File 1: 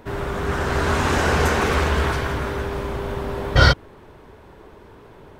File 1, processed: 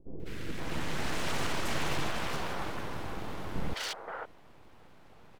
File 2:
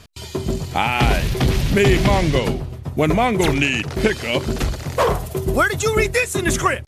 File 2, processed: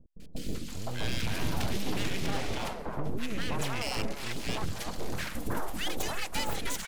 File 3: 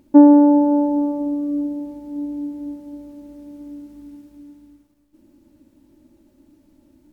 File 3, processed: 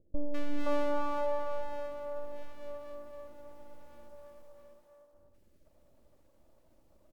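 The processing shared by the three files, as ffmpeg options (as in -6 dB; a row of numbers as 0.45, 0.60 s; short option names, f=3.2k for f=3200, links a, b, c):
-filter_complex "[0:a]alimiter=limit=-11dB:level=0:latency=1:release=33,aeval=exprs='abs(val(0))':c=same,acrossover=split=460|1500[a][b][c];[c]adelay=200[d];[b]adelay=520[e];[a][e][d]amix=inputs=3:normalize=0,volume=-8dB"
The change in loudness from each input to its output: -15.0, -15.5, -20.5 LU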